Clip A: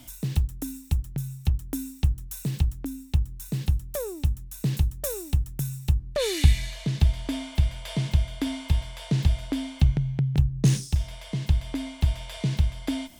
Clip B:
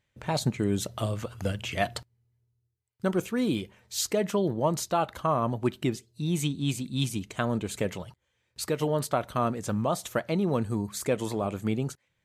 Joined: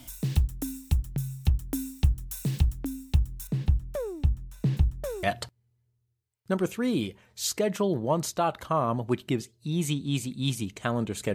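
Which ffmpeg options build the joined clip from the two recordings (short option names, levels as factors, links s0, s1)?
-filter_complex "[0:a]asettb=1/sr,asplit=3[s0][s1][s2];[s0]atrim=end=3.474[s3];[s1]atrim=start=3.47:end=5.23,asetpts=PTS-STARTPTS,afade=t=in:d=0.004:c=qsin,afade=t=out:st=1.756:d=0.004:c=qsin,lowpass=f=1600:p=1[s4];[s2]atrim=start=5.226[s5];[s3][s4]acrossfade=d=0.004:c1=hsin:c2=qsin[s6];[s6][s5]acrossfade=d=0.004:c1=qsin:c2=hsin,apad=whole_dur=11.34,atrim=end=11.34,atrim=end=5.232[s7];[1:a]atrim=start=1.768:end=7.88[s8];[s7][s8]acrossfade=d=0.004:c1=hsin:c2=hsin"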